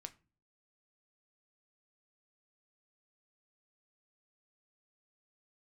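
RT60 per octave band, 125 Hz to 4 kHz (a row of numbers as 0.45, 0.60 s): 0.60, 0.55, 0.40, 0.30, 0.30, 0.25 s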